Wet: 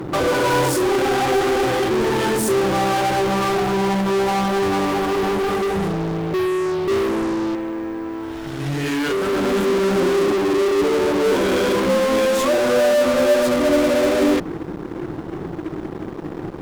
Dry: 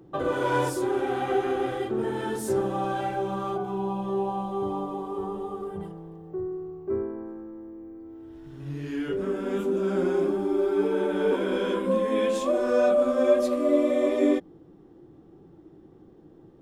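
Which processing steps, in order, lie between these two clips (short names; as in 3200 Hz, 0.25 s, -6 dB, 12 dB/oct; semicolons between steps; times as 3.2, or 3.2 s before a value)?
7.55–9.33 low shelf 450 Hz -11.5 dB; 10.31–11.26 elliptic band-pass 220–1100 Hz; in parallel at -8 dB: fuzz box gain 47 dB, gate -56 dBFS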